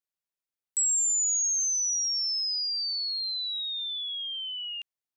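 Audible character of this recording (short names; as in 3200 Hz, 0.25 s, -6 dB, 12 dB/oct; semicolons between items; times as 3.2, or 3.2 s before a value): noise floor -93 dBFS; spectral tilt +11.5 dB/oct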